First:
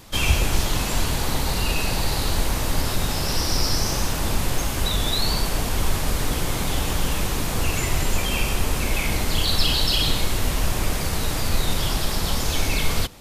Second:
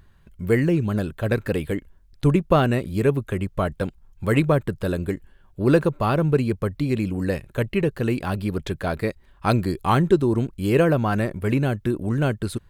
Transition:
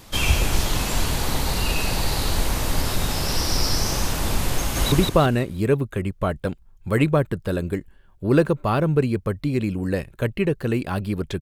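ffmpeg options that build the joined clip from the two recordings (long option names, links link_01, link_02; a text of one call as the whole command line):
ffmpeg -i cue0.wav -i cue1.wav -filter_complex "[0:a]apad=whole_dur=11.41,atrim=end=11.41,atrim=end=4.922[link_01];[1:a]atrim=start=2.278:end=8.77[link_02];[link_01][link_02]acrossfade=duration=0.004:curve1=hsin:curve2=hsin,asplit=2[link_03][link_04];[link_04]afade=type=in:start_time=4.58:duration=0.01,afade=type=out:start_time=4.92:duration=0.01,aecho=0:1:170|340|510|680|850:0.891251|0.311938|0.109178|0.0382124|0.0133743[link_05];[link_03][link_05]amix=inputs=2:normalize=0" out.wav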